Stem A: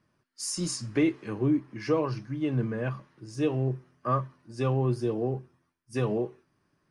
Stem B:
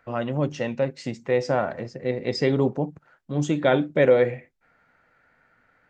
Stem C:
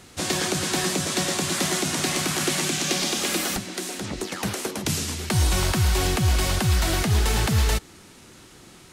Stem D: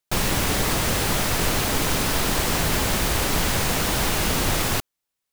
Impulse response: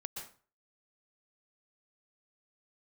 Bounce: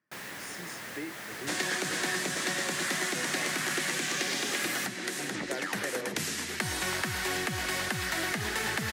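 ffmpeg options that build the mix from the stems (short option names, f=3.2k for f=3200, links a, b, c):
-filter_complex "[0:a]volume=-12.5dB[a];[1:a]adelay=1850,volume=-13dB[b];[2:a]adelay=1300,volume=1dB[c];[3:a]volume=-19.5dB[d];[a][b][c][d]amix=inputs=4:normalize=0,highpass=190,equalizer=f=1.8k:t=o:w=0.66:g=10.5,acompressor=threshold=-36dB:ratio=2"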